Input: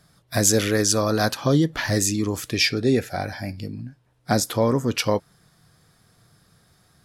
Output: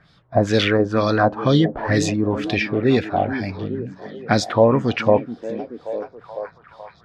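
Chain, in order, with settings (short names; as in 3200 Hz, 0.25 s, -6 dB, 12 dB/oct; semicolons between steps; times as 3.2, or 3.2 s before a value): LFO low-pass sine 2.1 Hz 690–3900 Hz; delay with a stepping band-pass 0.428 s, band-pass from 220 Hz, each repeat 0.7 oct, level -7.5 dB; gain +2.5 dB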